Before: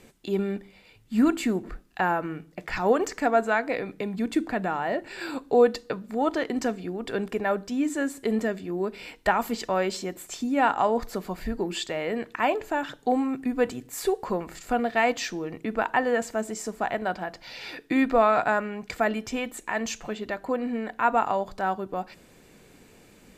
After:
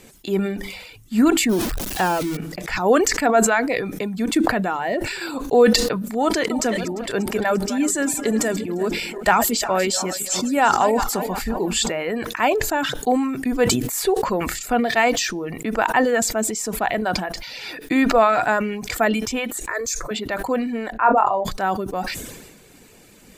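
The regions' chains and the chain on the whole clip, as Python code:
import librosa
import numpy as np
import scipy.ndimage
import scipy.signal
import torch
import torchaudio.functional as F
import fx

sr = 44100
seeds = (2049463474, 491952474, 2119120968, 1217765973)

y = fx.chain(x, sr, fx.zero_step(step_db=-27.5),
    fx.peak_eq(hz=1400.0, db=-4.0, octaves=1.7), at=(1.49, 2.37))
y = fx.chain(y, sr, fx.reverse_delay_fb(ms=174, feedback_pct=63, wet_db=-11.5),
    fx.dynamic_eq(hz=7900.0, q=1.1, threshold_db=-51.0, ratio=4.0, max_db=6), at=(6.05, 11.92))
y = fx.chain(y, sr, fx.peak_eq(hz=9200.0, db=3.5, octaves=1.6),
    fx.fixed_phaser(hz=790.0, stages=6), at=(19.68, 20.11))
y = fx.chain(y, sr, fx.envelope_sharpen(power=1.5),
    fx.room_flutter(wall_m=4.6, rt60_s=0.22), at=(20.92, 21.45))
y = fx.dereverb_blind(y, sr, rt60_s=0.54)
y = fx.high_shelf(y, sr, hz=4400.0, db=7.0)
y = fx.sustainer(y, sr, db_per_s=45.0)
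y = F.gain(torch.from_numpy(y), 4.5).numpy()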